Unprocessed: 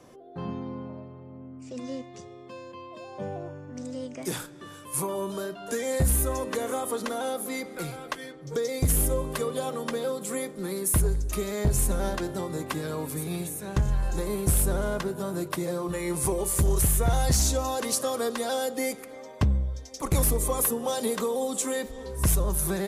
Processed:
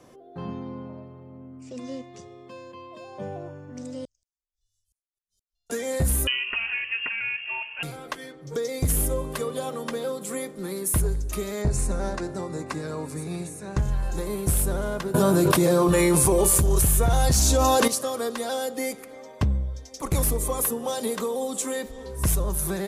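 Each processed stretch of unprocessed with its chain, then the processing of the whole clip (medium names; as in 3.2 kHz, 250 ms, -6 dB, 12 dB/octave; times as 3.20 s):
4.05–5.70 s: inverse Chebyshev band-stop 140–2200 Hz, stop band 60 dB + inverted gate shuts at -36 dBFS, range -37 dB + distance through air 250 m
6.27–7.83 s: peaking EQ 120 Hz +9 dB 1.5 oct + frequency inversion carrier 3 kHz
11.62–13.78 s: low-pass 9.1 kHz 24 dB/octave + peaking EQ 3.2 kHz -13 dB 0.26 oct
15.14–17.88 s: band-stop 2 kHz + level flattener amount 100%
whole clip: none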